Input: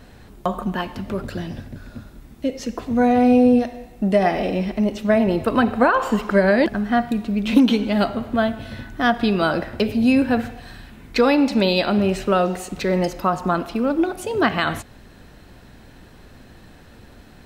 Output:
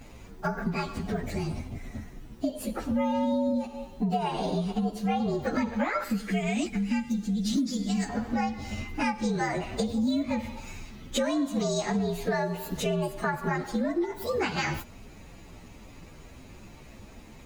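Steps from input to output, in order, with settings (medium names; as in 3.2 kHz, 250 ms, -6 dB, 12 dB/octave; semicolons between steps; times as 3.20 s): frequency axis rescaled in octaves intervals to 118%; 6.04–8.09 s: ten-band graphic EQ 125 Hz -7 dB, 250 Hz +4 dB, 500 Hz -8 dB, 1 kHz -12 dB, 8 kHz +6 dB; compression 5:1, threshold -27 dBFS, peak gain reduction 14 dB; trim +1.5 dB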